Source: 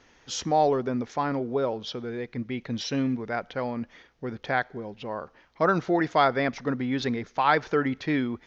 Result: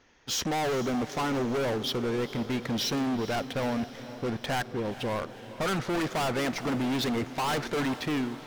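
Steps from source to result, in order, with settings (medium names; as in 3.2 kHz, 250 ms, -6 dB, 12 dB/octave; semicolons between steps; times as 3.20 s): fade out at the end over 0.57 s; waveshaping leveller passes 2; overload inside the chain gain 27 dB; echo that smears into a reverb 453 ms, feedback 61%, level -14 dB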